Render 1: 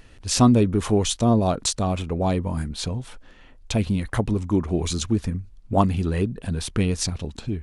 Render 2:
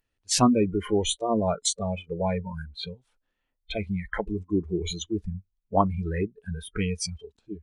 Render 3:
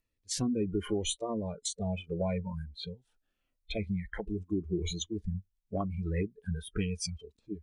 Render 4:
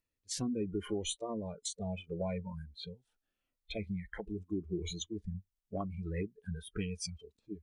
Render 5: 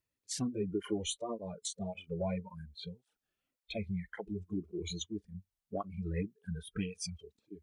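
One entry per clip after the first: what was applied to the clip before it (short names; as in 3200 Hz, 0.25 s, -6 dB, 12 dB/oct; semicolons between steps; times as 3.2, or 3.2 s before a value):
de-esser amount 25%; spectral noise reduction 28 dB; low shelf 380 Hz -4.5 dB
compressor 5:1, threshold -26 dBFS, peak gain reduction 10.5 dB; rotary speaker horn 0.8 Hz, later 8 Hz, at 4.34; cascading phaser falling 0.82 Hz
low shelf 73 Hz -5.5 dB; gain -4 dB
tape flanging out of phase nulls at 1.8 Hz, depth 4.4 ms; gain +3 dB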